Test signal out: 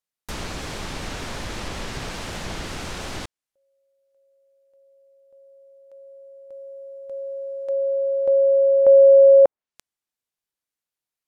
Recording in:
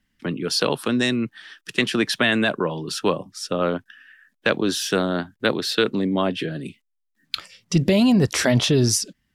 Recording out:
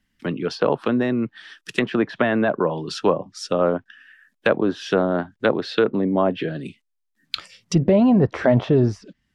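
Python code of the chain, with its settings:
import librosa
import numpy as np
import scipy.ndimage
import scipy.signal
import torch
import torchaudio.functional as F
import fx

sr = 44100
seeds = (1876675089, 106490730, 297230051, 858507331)

y = fx.quant_float(x, sr, bits=6)
y = fx.env_lowpass_down(y, sr, base_hz=1400.0, full_db=-18.0)
y = fx.dynamic_eq(y, sr, hz=670.0, q=0.96, threshold_db=-33.0, ratio=4.0, max_db=5)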